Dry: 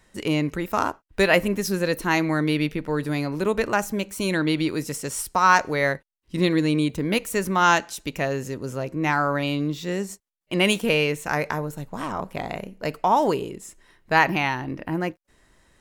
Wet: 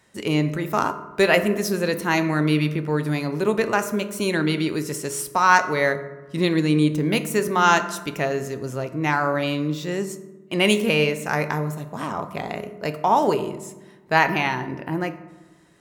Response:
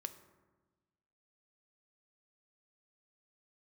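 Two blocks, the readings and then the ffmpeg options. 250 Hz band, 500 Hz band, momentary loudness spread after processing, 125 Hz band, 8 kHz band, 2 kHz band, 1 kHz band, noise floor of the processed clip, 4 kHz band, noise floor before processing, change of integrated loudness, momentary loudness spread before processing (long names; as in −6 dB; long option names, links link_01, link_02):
+1.5 dB, +2.0 dB, 12 LU, +2.5 dB, +1.0 dB, +1.0 dB, +1.0 dB, −49 dBFS, +1.0 dB, −65 dBFS, +1.5 dB, 12 LU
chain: -filter_complex "[0:a]highpass=99[link_01];[1:a]atrim=start_sample=2205,asetrate=48510,aresample=44100[link_02];[link_01][link_02]afir=irnorm=-1:irlink=0,volume=5dB"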